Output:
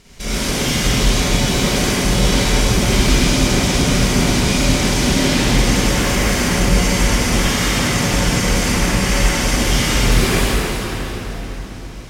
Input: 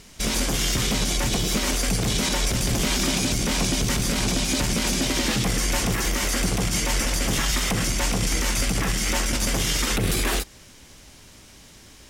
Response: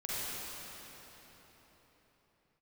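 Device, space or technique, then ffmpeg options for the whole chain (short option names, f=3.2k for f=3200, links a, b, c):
swimming-pool hall: -filter_complex "[1:a]atrim=start_sample=2205[a];[0:a][a]afir=irnorm=-1:irlink=0,highshelf=f=5.3k:g=-5,asettb=1/sr,asplit=3[b][c][d];[b]atrim=end=7.474[e];[c]atrim=start=7.47:end=8.13,asetpts=PTS-STARTPTS,afade=t=in:d=0.004:c=qsin,afade=t=out:st=0.656:d=0.004:c=qsin,highpass=77[f];[d]atrim=start=8.126[g];[e][f]acrossfade=d=0.004:c1=hsin:c2=qsin[h];[h][g]acrossfade=d=0.004:c1=qsin:c2=hsin,volume=3.5dB"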